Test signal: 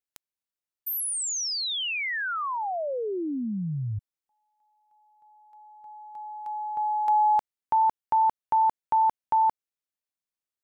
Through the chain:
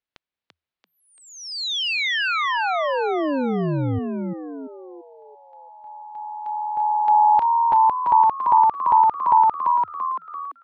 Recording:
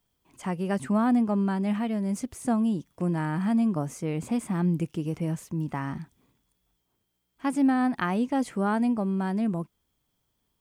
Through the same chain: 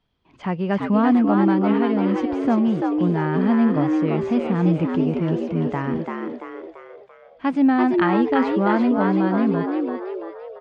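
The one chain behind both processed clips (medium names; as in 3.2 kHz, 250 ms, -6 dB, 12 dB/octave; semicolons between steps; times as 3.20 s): low-pass 4.1 kHz 24 dB/octave; frequency-shifting echo 339 ms, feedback 47%, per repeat +81 Hz, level -3.5 dB; trim +5.5 dB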